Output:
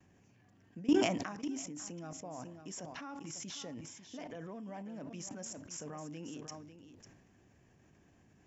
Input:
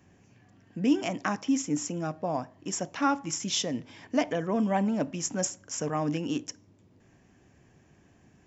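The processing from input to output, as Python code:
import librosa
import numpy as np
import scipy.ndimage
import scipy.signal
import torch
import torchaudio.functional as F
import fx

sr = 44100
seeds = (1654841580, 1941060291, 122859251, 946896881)

y = fx.level_steps(x, sr, step_db=21)
y = y + 10.0 ** (-11.5 / 20.0) * np.pad(y, (int(547 * sr / 1000.0), 0))[:len(y)]
y = fx.sustainer(y, sr, db_per_s=48.0)
y = F.gain(torch.from_numpy(y), -3.0).numpy()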